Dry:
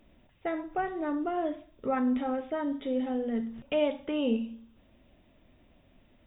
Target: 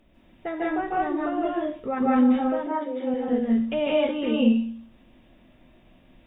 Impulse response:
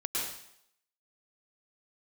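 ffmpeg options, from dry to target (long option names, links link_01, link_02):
-filter_complex "[0:a]asettb=1/sr,asplit=3[link_01][link_02][link_03];[link_01]atrim=end=2.474[link_04];[link_02]atrim=start=2.47:end=3.14,asetpts=PTS-STARTPTS,afade=type=in:duration=0.004:curve=qsin,afade=type=out:start_time=0.666:duration=0.004:curve=qsin,highpass=310,lowpass=2100[link_05];[link_03]atrim=start=3.136[link_06];[link_04][link_05]acrossfade=duration=0.004:curve1=hsin:curve2=qsin[link_07];[link_07][link_06]acrossfade=duration=0.004:curve1=qsin:curve2=hsin[link_08];[1:a]atrim=start_sample=2205,atrim=end_sample=6615,asetrate=30870,aresample=44100[link_09];[link_08][link_09]afir=irnorm=-1:irlink=0"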